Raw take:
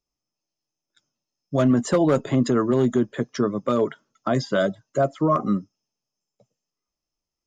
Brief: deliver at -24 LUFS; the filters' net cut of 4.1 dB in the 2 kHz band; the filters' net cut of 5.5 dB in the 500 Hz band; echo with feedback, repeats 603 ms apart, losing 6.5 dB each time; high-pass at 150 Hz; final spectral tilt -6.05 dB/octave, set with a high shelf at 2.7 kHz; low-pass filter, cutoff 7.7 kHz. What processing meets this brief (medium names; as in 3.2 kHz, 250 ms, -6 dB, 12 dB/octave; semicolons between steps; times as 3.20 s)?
high-pass 150 Hz; low-pass 7.7 kHz; peaking EQ 500 Hz -7 dB; peaking EQ 2 kHz -7 dB; treble shelf 2.7 kHz +4 dB; feedback delay 603 ms, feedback 47%, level -6.5 dB; trim +1.5 dB